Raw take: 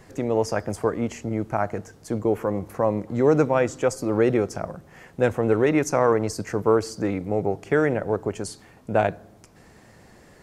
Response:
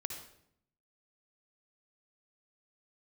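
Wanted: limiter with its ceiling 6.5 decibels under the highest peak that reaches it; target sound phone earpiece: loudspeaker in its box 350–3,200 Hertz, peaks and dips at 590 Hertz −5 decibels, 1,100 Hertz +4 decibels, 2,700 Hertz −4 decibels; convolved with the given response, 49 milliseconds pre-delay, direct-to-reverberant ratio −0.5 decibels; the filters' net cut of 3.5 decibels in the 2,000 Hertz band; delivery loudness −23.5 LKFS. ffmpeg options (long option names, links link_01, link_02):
-filter_complex "[0:a]equalizer=frequency=2000:width_type=o:gain=-4.5,alimiter=limit=-13dB:level=0:latency=1,asplit=2[link_01][link_02];[1:a]atrim=start_sample=2205,adelay=49[link_03];[link_02][link_03]afir=irnorm=-1:irlink=0,volume=1dB[link_04];[link_01][link_04]amix=inputs=2:normalize=0,highpass=350,equalizer=frequency=590:width_type=q:width=4:gain=-5,equalizer=frequency=1100:width_type=q:width=4:gain=4,equalizer=frequency=2700:width_type=q:width=4:gain=-4,lowpass=frequency=3200:width=0.5412,lowpass=frequency=3200:width=1.3066,volume=3dB"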